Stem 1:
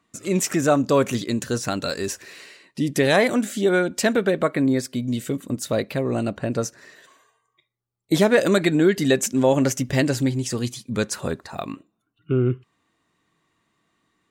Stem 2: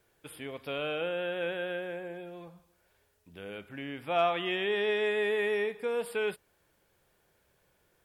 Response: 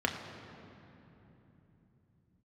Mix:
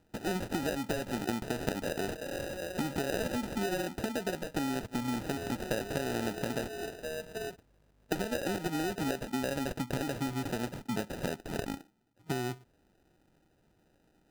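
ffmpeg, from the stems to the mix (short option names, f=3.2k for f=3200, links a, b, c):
-filter_complex "[0:a]acompressor=threshold=-23dB:ratio=6,volume=1.5dB[a];[1:a]aeval=exprs='val(0)+0.000562*(sin(2*PI*50*n/s)+sin(2*PI*2*50*n/s)/2+sin(2*PI*3*50*n/s)/3+sin(2*PI*4*50*n/s)/4+sin(2*PI*5*50*n/s)/5)':c=same,acompressor=threshold=-39dB:ratio=2,adelay=1200,volume=-1.5dB[b];[a][b]amix=inputs=2:normalize=0,acrossover=split=140|2200[c][d][e];[c]acompressor=threshold=-56dB:ratio=4[f];[d]acompressor=threshold=-32dB:ratio=4[g];[e]acompressor=threshold=-39dB:ratio=4[h];[f][g][h]amix=inputs=3:normalize=0,acrusher=samples=40:mix=1:aa=0.000001"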